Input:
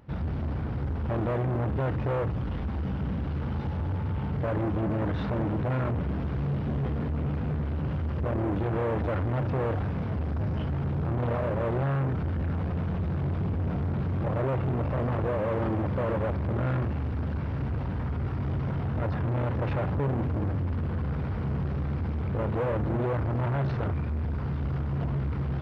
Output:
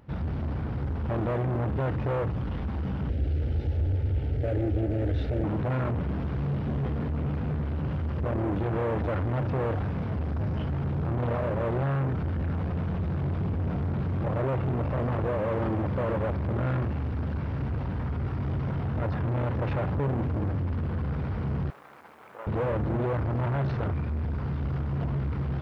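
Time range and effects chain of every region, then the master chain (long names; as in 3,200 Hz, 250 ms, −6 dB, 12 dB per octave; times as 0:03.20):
0:03.09–0:05.44: low-shelf EQ 210 Hz +9 dB + phaser with its sweep stopped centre 430 Hz, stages 4
0:21.70–0:22.47: high-pass filter 940 Hz + high-shelf EQ 2,100 Hz −9.5 dB + bit-depth reduction 12 bits, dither triangular
whole clip: no processing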